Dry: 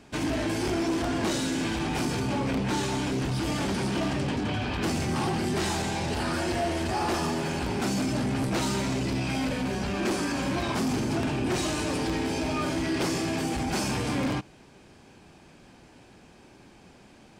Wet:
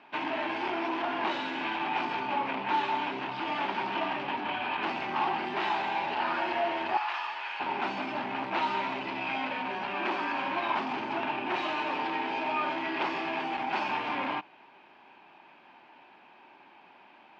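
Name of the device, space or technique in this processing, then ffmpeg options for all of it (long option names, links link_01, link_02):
phone earpiece: -filter_complex "[0:a]highpass=470,equalizer=frequency=480:width_type=q:width=4:gain=-9,equalizer=frequency=920:width_type=q:width=4:gain=9,equalizer=frequency=2600:width_type=q:width=4:gain=4,lowpass=frequency=3200:width=0.5412,lowpass=frequency=3200:width=1.3066,asettb=1/sr,asplit=3[link_01][link_02][link_03];[link_01]atrim=end=6.974[link_04];[link_02]atrim=start=6.97:end=7.6,asetpts=PTS-STARTPTS,afade=type=in:duration=0.004:curve=qsin,afade=type=out:start_time=0.626:duration=0.004:curve=qsin,highpass=1300[link_05];[link_03]atrim=start=7.596[link_06];[link_04][link_05]acrossfade=duration=0.004:curve1=hsin:curve2=qsin[link_07];[link_07][link_06]acrossfade=duration=0.004:curve1=qsin:curve2=hsin"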